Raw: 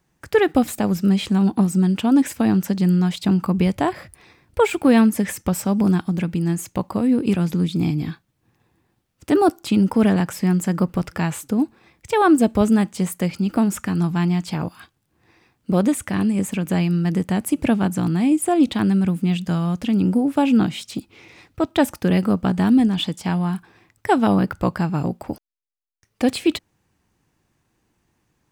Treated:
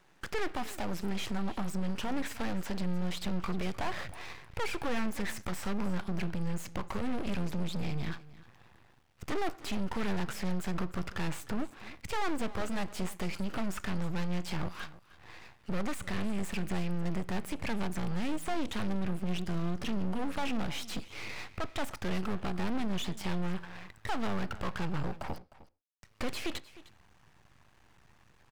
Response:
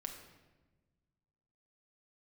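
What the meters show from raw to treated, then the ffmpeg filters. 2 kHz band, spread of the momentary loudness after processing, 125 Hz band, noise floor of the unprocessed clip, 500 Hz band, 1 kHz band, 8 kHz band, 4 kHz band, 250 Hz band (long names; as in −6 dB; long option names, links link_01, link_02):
−9.0 dB, 7 LU, −15.0 dB, −70 dBFS, −16.0 dB, −13.0 dB, −13.5 dB, −9.0 dB, −18.0 dB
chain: -filter_complex "[0:a]asubboost=boost=10:cutoff=87,acrossover=split=500[link_01][link_02];[link_01]alimiter=limit=-13dB:level=0:latency=1:release=321[link_03];[link_03][link_02]amix=inputs=2:normalize=0,acompressor=threshold=-33dB:ratio=2,asplit=2[link_04][link_05];[link_05]highpass=frequency=720:poles=1,volume=27dB,asoftclip=type=tanh:threshold=-14.5dB[link_06];[link_04][link_06]amix=inputs=2:normalize=0,lowpass=frequency=2400:poles=1,volume=-6dB,aecho=1:1:307:0.126,aeval=exprs='max(val(0),0)':channel_layout=same,asplit=2[link_07][link_08];[1:a]atrim=start_sample=2205,atrim=end_sample=6174,lowpass=5700[link_09];[link_08][link_09]afir=irnorm=-1:irlink=0,volume=-11.5dB[link_10];[link_07][link_10]amix=inputs=2:normalize=0,volume=-8dB"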